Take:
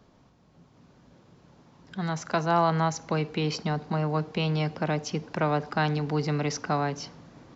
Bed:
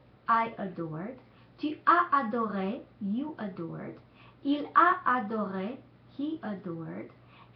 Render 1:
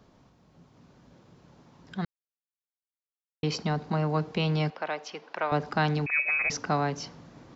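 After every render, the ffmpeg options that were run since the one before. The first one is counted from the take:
-filter_complex "[0:a]asettb=1/sr,asplit=3[a][b][c];[a]atrim=end=4.704[d];[b]atrim=start=4.7:end=5.52,asetpts=PTS-STARTPTS,afade=t=in:d=0.004:c=qsin,afade=t=out:st=0.816:d=0.004:c=qsin,highpass=620,lowpass=3.9k[e];[c]atrim=start=5.516[f];[d][e]acrossfade=d=0.004:c1=hsin:c2=qsin[g];[g][f]acrossfade=d=0.004:c1=qsin:c2=hsin,asettb=1/sr,asplit=3[h][i][j];[h]atrim=end=6.064[k];[i]atrim=start=6.06:end=6.5,asetpts=PTS-STARTPTS,afade=t=in:d=0.004:c=qsin,afade=t=out:st=0.436:d=0.004:c=qsin,lowpass=f=2.3k:t=q:w=0.5098,lowpass=f=2.3k:t=q:w=0.6013,lowpass=f=2.3k:t=q:w=0.9,lowpass=f=2.3k:t=q:w=2.563,afreqshift=-2700[l];[j]atrim=start=6.496[m];[k][l]acrossfade=d=0.004:c1=hsin:c2=qsin[n];[n][m]acrossfade=d=0.004:c1=qsin:c2=hsin,asplit=3[o][p][q];[o]atrim=end=2.05,asetpts=PTS-STARTPTS,afade=t=out:st=2.046:d=0.004:c=hsin[r];[p]atrim=start=2.05:end=3.43,asetpts=PTS-STARTPTS,volume=0[s];[q]atrim=start=3.43,asetpts=PTS-STARTPTS,afade=t=in:d=0.004:c=hsin[t];[r][s][t]concat=n=3:v=0:a=1"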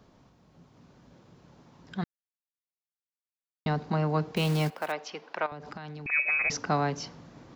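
-filter_complex "[0:a]asettb=1/sr,asplit=3[a][b][c];[a]atrim=end=4.364[d];[b]atrim=start=4.36:end=4.92,asetpts=PTS-STARTPTS,afade=t=in:d=0.004:c=qsin,afade=t=out:st=0.556:d=0.004:c=qsin,acrusher=bits=4:mode=log:mix=0:aa=0.000001[e];[c]atrim=start=4.916[f];[d][e]acrossfade=d=0.004:c1=hsin:c2=qsin[g];[g][f]acrossfade=d=0.004:c1=qsin:c2=hsin,asettb=1/sr,asplit=3[h][i][j];[h]atrim=end=5.464[k];[i]atrim=start=5.46:end=6.06,asetpts=PTS-STARTPTS,afade=t=in:d=0.004:c=qsin,afade=t=out:st=0.596:d=0.004:c=qsin,acompressor=threshold=-37dB:ratio=12:attack=3.2:release=140:knee=1:detection=peak[l];[j]atrim=start=6.056[m];[k][l]acrossfade=d=0.004:c1=hsin:c2=qsin[n];[n][m]acrossfade=d=0.004:c1=qsin:c2=hsin,asplit=3[o][p][q];[o]atrim=end=2.04,asetpts=PTS-STARTPTS,afade=t=out:st=2.036:d=0.004:c=hsin[r];[p]atrim=start=2.04:end=3.66,asetpts=PTS-STARTPTS,volume=0[s];[q]atrim=start=3.66,asetpts=PTS-STARTPTS,afade=t=in:d=0.004:c=hsin[t];[r][s][t]concat=n=3:v=0:a=1"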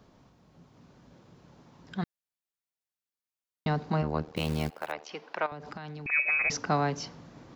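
-filter_complex "[0:a]asplit=3[a][b][c];[a]afade=t=out:st=4.01:d=0.02[d];[b]tremolo=f=77:d=1,afade=t=in:st=4.01:d=0.02,afade=t=out:st=5.09:d=0.02[e];[c]afade=t=in:st=5.09:d=0.02[f];[d][e][f]amix=inputs=3:normalize=0"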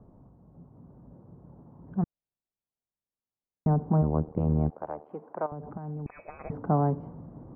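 -af "lowpass=f=1k:w=0.5412,lowpass=f=1k:w=1.3066,lowshelf=f=260:g=8.5"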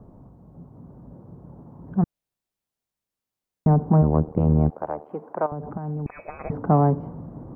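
-af "acontrast=79"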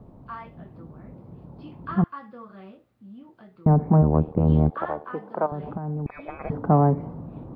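-filter_complex "[1:a]volume=-12.5dB[a];[0:a][a]amix=inputs=2:normalize=0"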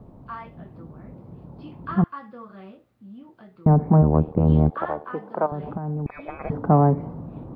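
-af "volume=1.5dB"

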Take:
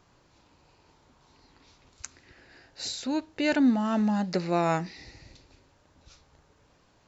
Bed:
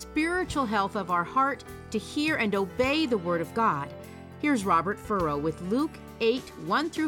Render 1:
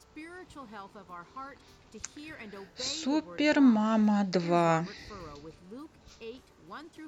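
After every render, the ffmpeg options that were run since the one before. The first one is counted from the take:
-filter_complex "[1:a]volume=-19dB[a];[0:a][a]amix=inputs=2:normalize=0"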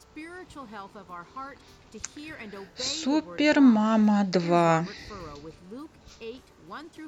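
-af "volume=4dB"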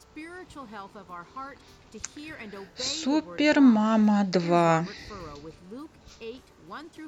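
-af anull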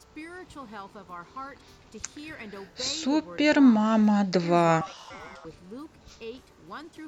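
-filter_complex "[0:a]asettb=1/sr,asplit=3[a][b][c];[a]atrim=end=4.814[d];[b]atrim=start=4.81:end=5.45,asetpts=PTS-STARTPTS,afade=t=in:d=0.004:c=qsin,afade=t=out:st=0.636:d=0.004:c=qsin,aeval=exprs='val(0)*sin(2*PI*960*n/s)':c=same[e];[c]atrim=start=5.446[f];[d][e]acrossfade=d=0.004:c1=hsin:c2=qsin[g];[g][f]acrossfade=d=0.004:c1=qsin:c2=hsin"

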